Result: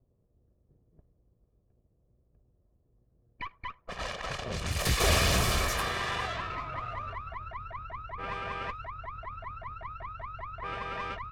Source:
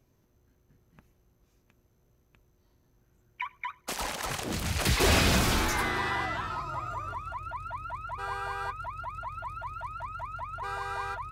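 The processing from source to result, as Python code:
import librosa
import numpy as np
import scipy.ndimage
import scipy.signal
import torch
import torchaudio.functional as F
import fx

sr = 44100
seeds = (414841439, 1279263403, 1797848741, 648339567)

y = fx.lower_of_two(x, sr, delay_ms=1.7)
y = fx.env_lowpass(y, sr, base_hz=480.0, full_db=-27.5)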